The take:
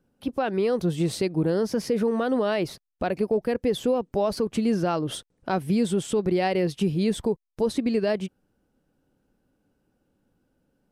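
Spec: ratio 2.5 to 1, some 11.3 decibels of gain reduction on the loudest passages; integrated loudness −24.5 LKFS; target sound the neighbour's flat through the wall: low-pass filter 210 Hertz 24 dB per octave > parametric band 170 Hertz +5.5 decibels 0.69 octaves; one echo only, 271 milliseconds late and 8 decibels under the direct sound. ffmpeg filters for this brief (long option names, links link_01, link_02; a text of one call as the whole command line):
ffmpeg -i in.wav -af "acompressor=threshold=-37dB:ratio=2.5,lowpass=frequency=210:width=0.5412,lowpass=frequency=210:width=1.3066,equalizer=frequency=170:width_type=o:width=0.69:gain=5.5,aecho=1:1:271:0.398,volume=14.5dB" out.wav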